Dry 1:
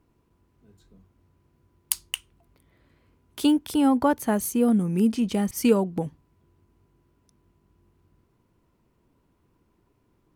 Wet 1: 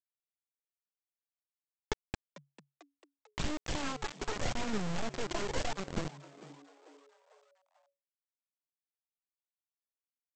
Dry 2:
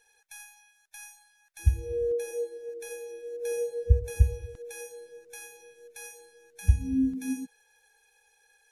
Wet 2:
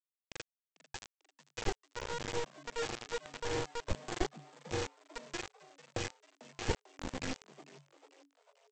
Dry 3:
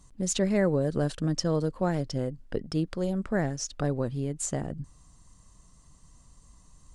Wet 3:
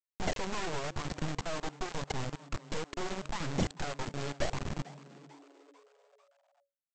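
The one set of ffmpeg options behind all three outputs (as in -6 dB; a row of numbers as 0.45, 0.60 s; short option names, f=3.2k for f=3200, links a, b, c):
-filter_complex "[0:a]equalizer=f=100:t=o:w=0.67:g=8,equalizer=f=250:t=o:w=0.67:g=-5,equalizer=f=6.3k:t=o:w=0.67:g=10,acrossover=split=160[a][b];[b]acompressor=threshold=-28dB:ratio=10[c];[a][c]amix=inputs=2:normalize=0,aeval=exprs='0.668*(cos(1*acos(clip(val(0)/0.668,-1,1)))-cos(1*PI/2))+0.0168*(cos(2*acos(clip(val(0)/0.668,-1,1)))-cos(2*PI/2))+0.00531*(cos(5*acos(clip(val(0)/0.668,-1,1)))-cos(5*PI/2))+0.133*(cos(6*acos(clip(val(0)/0.668,-1,1)))-cos(6*PI/2))+0.133*(cos(7*acos(clip(val(0)/0.668,-1,1)))-cos(7*PI/2))':c=same,acrossover=split=4000[d][e];[d]acompressor=threshold=-45dB:ratio=8[f];[e]acrusher=samples=35:mix=1:aa=0.000001[g];[f][g]amix=inputs=2:normalize=0,aphaser=in_gain=1:out_gain=1:delay=3:decay=0.67:speed=0.84:type=triangular,aresample=16000,acrusher=bits=6:mix=0:aa=0.000001,aresample=44100,asplit=5[h][i][j][k][l];[i]adelay=445,afreqshift=140,volume=-18.5dB[m];[j]adelay=890,afreqshift=280,volume=-24.5dB[n];[k]adelay=1335,afreqshift=420,volume=-30.5dB[o];[l]adelay=1780,afreqshift=560,volume=-36.6dB[p];[h][m][n][o][p]amix=inputs=5:normalize=0,volume=6dB"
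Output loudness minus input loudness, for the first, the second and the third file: -14.5, -11.0, -8.5 LU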